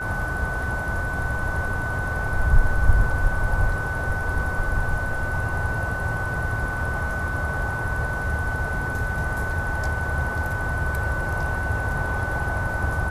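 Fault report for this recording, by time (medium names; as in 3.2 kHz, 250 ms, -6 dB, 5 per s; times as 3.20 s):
whine 1.5 kHz -28 dBFS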